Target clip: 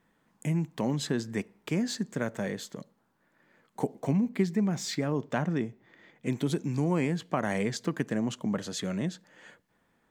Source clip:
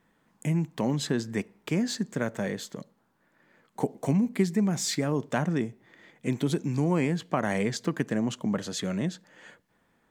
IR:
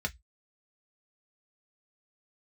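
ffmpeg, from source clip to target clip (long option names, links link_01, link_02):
-filter_complex "[0:a]asettb=1/sr,asplit=3[link_01][link_02][link_03];[link_01]atrim=end=4.004[link_04];[link_02]atrim=start=4:end=6.27,asetpts=PTS-STARTPTS,afade=type=in:duration=0.004:curve=qsin,afade=type=out:start_time=2.266:duration=0.004:curve=qsin,equalizer=frequency=10000:width_type=o:width=1.1:gain=-9[link_05];[link_03]atrim=start=6.266[link_06];[link_04][link_05]acrossfade=duration=0.004:curve1=hsin:curve2=qsin[link_07];[link_07][link_06]acrossfade=duration=0.004:curve1=qsin:curve2=hsin,volume=-2dB"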